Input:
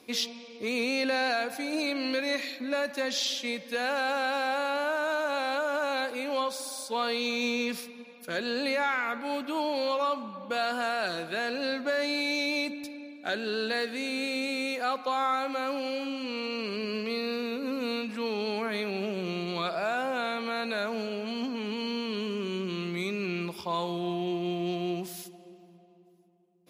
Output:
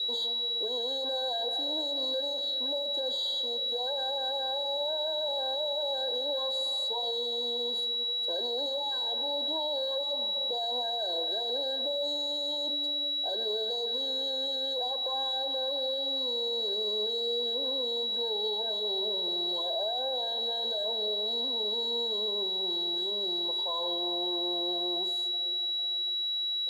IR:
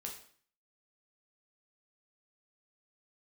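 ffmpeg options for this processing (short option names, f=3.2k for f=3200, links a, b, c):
-filter_complex "[0:a]asoftclip=type=hard:threshold=-32.5dB,asuperstop=centerf=1300:order=12:qfactor=2.1,aemphasis=mode=reproduction:type=riaa,acompressor=mode=upward:threshold=-45dB:ratio=2.5,aeval=exprs='val(0)+0.0251*sin(2*PI*3900*n/s)':c=same,adynamicequalizer=threshold=0.00251:dfrequency=850:dqfactor=2.6:tfrequency=850:tqfactor=2.6:attack=5:release=100:ratio=0.375:range=2:mode=cutabove:tftype=bell,highpass=f=480:w=0.5412,highpass=f=480:w=1.3066,alimiter=level_in=3.5dB:limit=-24dB:level=0:latency=1:release=95,volume=-3.5dB,acrusher=bits=8:mode=log:mix=0:aa=0.000001,asplit=2[a][b];[1:a]atrim=start_sample=2205,lowshelf=f=410:g=5.5[c];[b][c]afir=irnorm=-1:irlink=0,volume=-7dB[d];[a][d]amix=inputs=2:normalize=0,afftfilt=real='re*eq(mod(floor(b*sr/1024/1600),2),0)':imag='im*eq(mod(floor(b*sr/1024/1600),2),0)':win_size=1024:overlap=0.75,volume=2dB"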